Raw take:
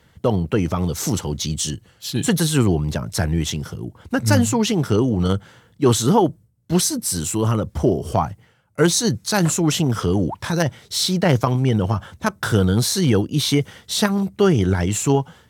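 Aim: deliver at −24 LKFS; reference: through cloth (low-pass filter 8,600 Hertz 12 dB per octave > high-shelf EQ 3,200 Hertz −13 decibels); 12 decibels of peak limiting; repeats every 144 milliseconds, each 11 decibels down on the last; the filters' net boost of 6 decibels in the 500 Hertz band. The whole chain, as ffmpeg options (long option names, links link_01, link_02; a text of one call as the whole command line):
ffmpeg -i in.wav -af "equalizer=frequency=500:width_type=o:gain=8,alimiter=limit=-10dB:level=0:latency=1,lowpass=8600,highshelf=frequency=3200:gain=-13,aecho=1:1:144|288|432:0.282|0.0789|0.0221,volume=-2.5dB" out.wav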